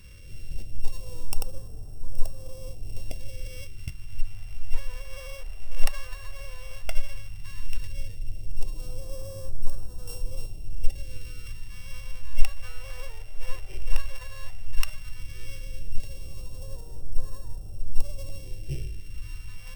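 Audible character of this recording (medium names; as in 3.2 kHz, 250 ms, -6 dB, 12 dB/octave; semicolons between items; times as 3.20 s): a buzz of ramps at a fixed pitch in blocks of 16 samples; phasing stages 2, 0.13 Hz, lowest notch 180–2200 Hz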